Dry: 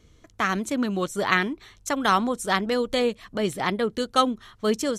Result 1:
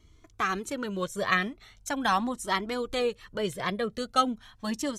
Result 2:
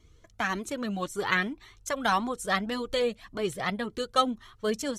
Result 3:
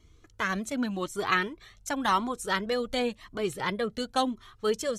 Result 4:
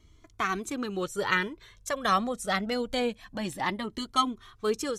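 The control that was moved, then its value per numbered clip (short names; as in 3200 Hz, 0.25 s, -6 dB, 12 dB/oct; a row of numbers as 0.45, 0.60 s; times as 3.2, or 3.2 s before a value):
cascading flanger, rate: 0.4, 1.8, 0.92, 0.25 Hz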